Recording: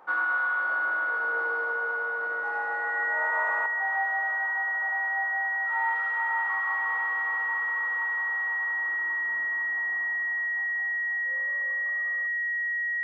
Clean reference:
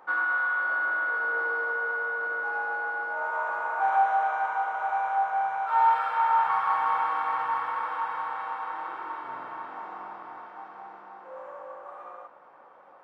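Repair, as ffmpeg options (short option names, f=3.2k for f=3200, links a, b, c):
-af "bandreject=f=1.9k:w=30,asetnsamples=n=441:p=0,asendcmd='3.66 volume volume 9.5dB',volume=0dB"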